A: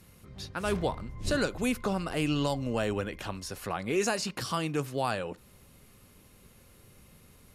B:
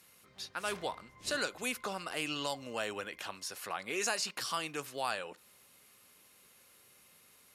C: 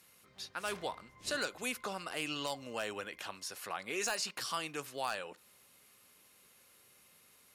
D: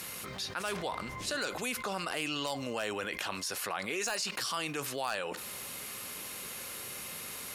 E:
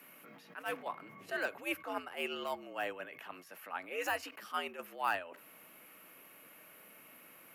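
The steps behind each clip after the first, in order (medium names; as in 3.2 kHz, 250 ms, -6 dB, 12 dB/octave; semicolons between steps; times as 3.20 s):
high-pass 1.2 kHz 6 dB/octave
wavefolder -23 dBFS; trim -1.5 dB
level flattener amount 70%
gate -32 dBFS, range -18 dB; frequency shift +82 Hz; high-order bell 5.8 kHz -15 dB; trim +6 dB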